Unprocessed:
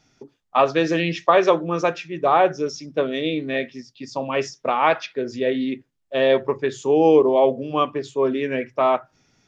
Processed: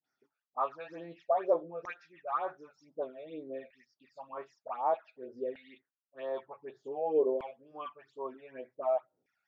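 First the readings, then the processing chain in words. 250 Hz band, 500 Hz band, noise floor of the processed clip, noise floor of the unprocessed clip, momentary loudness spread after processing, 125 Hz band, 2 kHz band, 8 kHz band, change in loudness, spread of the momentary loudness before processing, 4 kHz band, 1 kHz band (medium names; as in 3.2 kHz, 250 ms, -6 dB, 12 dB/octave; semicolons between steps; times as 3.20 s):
-22.5 dB, -15.0 dB, under -85 dBFS, -69 dBFS, 17 LU, under -25 dB, -23.5 dB, no reading, -15.0 dB, 11 LU, under -25 dB, -15.0 dB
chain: phase dispersion highs, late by 48 ms, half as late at 950 Hz; LFO band-pass saw down 0.54 Hz 460–1800 Hz; phase shifter stages 12, 2.1 Hz, lowest notch 310–2900 Hz; trim -8 dB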